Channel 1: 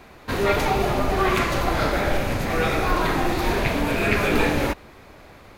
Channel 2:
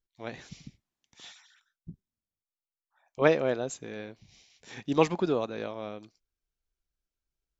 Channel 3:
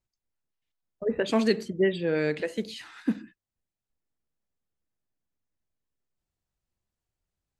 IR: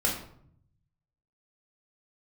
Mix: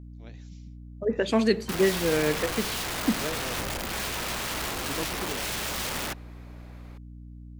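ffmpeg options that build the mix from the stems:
-filter_complex "[0:a]aeval=exprs='(mod(9.44*val(0)+1,2)-1)/9.44':c=same,adelay=1400,volume=-7.5dB[a];[1:a]equalizer=f=960:t=o:w=2.8:g=-9.5,volume=-6.5dB[b];[2:a]aeval=exprs='val(0)+0.00708*(sin(2*PI*60*n/s)+sin(2*PI*2*60*n/s)/2+sin(2*PI*3*60*n/s)/3+sin(2*PI*4*60*n/s)/4+sin(2*PI*5*60*n/s)/5)':c=same,volume=1dB[c];[a][b][c]amix=inputs=3:normalize=0"

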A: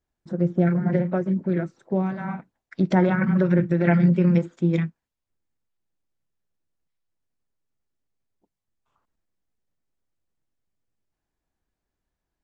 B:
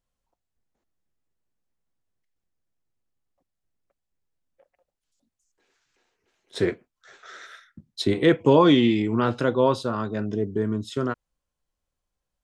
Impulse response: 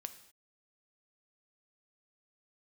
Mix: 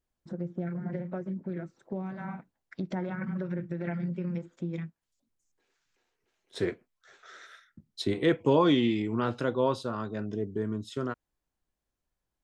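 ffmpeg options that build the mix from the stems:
-filter_complex "[0:a]acompressor=threshold=-30dB:ratio=2.5,volume=-5dB[a];[1:a]volume=-6.5dB[b];[a][b]amix=inputs=2:normalize=0"

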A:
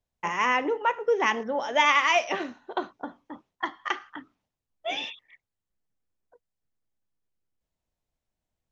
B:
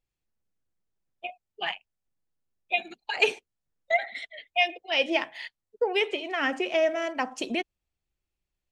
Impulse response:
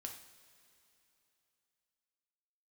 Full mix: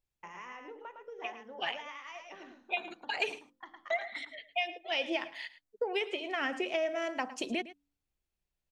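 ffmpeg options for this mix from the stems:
-filter_complex "[0:a]bandreject=f=47.57:t=h:w=4,bandreject=f=95.14:t=h:w=4,bandreject=f=142.71:t=h:w=4,bandreject=f=190.28:t=h:w=4,bandreject=f=237.85:t=h:w=4,bandreject=f=285.42:t=h:w=4,bandreject=f=332.99:t=h:w=4,bandreject=f=380.56:t=h:w=4,bandreject=f=428.13:t=h:w=4,bandreject=f=475.7:t=h:w=4,bandreject=f=523.27:t=h:w=4,acompressor=threshold=-32dB:ratio=4,volume=-13.5dB,asplit=2[a][b];[b]volume=-5.5dB[c];[1:a]acompressor=threshold=-25dB:ratio=6,volume=-3.5dB,asplit=2[d][e];[e]volume=-16dB[f];[c][f]amix=inputs=2:normalize=0,aecho=0:1:109:1[g];[a][d][g]amix=inputs=3:normalize=0,bandreject=f=95.14:t=h:w=4,bandreject=f=190.28:t=h:w=4,bandreject=f=285.42:t=h:w=4"

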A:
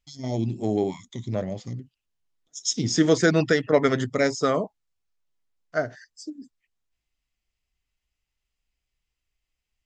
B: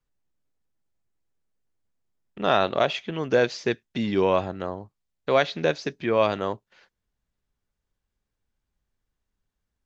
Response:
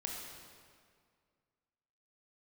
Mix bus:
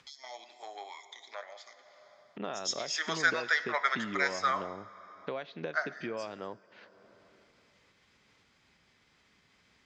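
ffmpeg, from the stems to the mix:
-filter_complex "[0:a]highpass=f=950:w=0.5412,highpass=f=950:w=1.3066,equalizer=f=2.8k:w=7.6:g=-13.5,volume=-1.5dB,asplit=2[a][b];[b]volume=-9.5dB[c];[1:a]acompressor=threshold=-29dB:ratio=12,volume=-5.5dB,asplit=2[d][e];[e]volume=-20dB[f];[2:a]atrim=start_sample=2205[g];[c][f]amix=inputs=2:normalize=0[h];[h][g]afir=irnorm=-1:irlink=0[i];[a][d][i]amix=inputs=3:normalize=0,acompressor=mode=upward:threshold=-41dB:ratio=2.5,highpass=140,lowpass=4k"

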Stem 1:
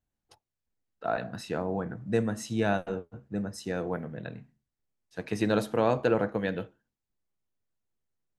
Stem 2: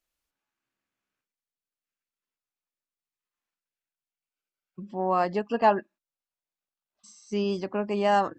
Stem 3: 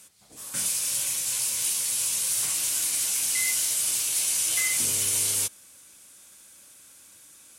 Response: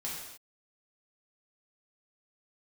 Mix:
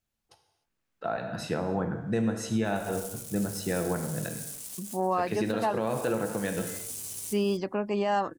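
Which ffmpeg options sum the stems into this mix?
-filter_complex "[0:a]volume=-4dB,asplit=2[a][b];[b]volume=-4dB[c];[1:a]volume=-3.5dB,asplit=2[d][e];[2:a]aeval=exprs='0.266*(cos(1*acos(clip(val(0)/0.266,-1,1)))-cos(1*PI/2))+0.0422*(cos(7*acos(clip(val(0)/0.266,-1,1)))-cos(7*PI/2))':c=same,alimiter=limit=-21.5dB:level=0:latency=1,equalizer=f=1.8k:w=0.38:g=-10.5,adelay=2100,volume=-5.5dB,afade=t=in:st=2.73:d=0.23:silence=0.298538[f];[e]apad=whole_len=427151[g];[f][g]sidechaincompress=threshold=-46dB:ratio=6:attack=43:release=139[h];[3:a]atrim=start_sample=2205[i];[c][i]afir=irnorm=-1:irlink=0[j];[a][d][h][j]amix=inputs=4:normalize=0,dynaudnorm=f=460:g=3:m=4.5dB,alimiter=limit=-18dB:level=0:latency=1:release=293"

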